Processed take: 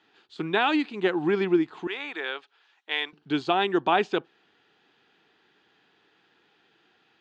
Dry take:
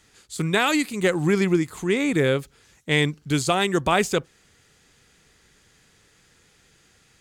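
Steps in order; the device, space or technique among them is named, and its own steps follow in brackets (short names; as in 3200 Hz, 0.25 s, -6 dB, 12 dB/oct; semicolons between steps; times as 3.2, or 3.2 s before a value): phone earpiece (speaker cabinet 330–3400 Hz, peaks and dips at 330 Hz +4 dB, 540 Hz -9 dB, 810 Hz +4 dB, 1200 Hz -4 dB, 2100 Hz -9 dB); 1.87–3.13 HPF 860 Hz 12 dB/oct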